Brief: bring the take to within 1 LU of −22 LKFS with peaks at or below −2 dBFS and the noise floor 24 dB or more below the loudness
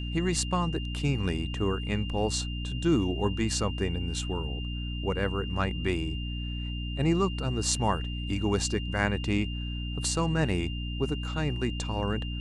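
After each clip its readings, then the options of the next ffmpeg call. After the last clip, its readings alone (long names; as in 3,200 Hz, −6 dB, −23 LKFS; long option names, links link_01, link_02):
mains hum 60 Hz; hum harmonics up to 300 Hz; level of the hum −31 dBFS; interfering tone 2,800 Hz; level of the tone −40 dBFS; integrated loudness −29.5 LKFS; sample peak −8.5 dBFS; target loudness −22.0 LKFS
→ -af "bandreject=frequency=60:width_type=h:width=6,bandreject=frequency=120:width_type=h:width=6,bandreject=frequency=180:width_type=h:width=6,bandreject=frequency=240:width_type=h:width=6,bandreject=frequency=300:width_type=h:width=6"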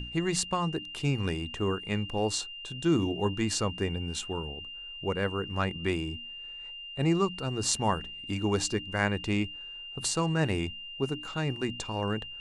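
mains hum none found; interfering tone 2,800 Hz; level of the tone −40 dBFS
→ -af "bandreject=frequency=2800:width=30"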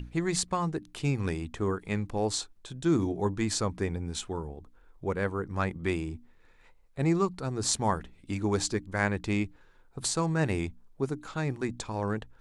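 interfering tone none found; integrated loudness −31.0 LKFS; sample peak −9.5 dBFS; target loudness −22.0 LKFS
→ -af "volume=9dB,alimiter=limit=-2dB:level=0:latency=1"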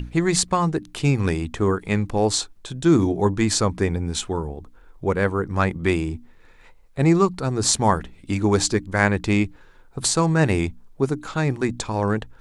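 integrated loudness −22.0 LKFS; sample peak −2.0 dBFS; background noise floor −49 dBFS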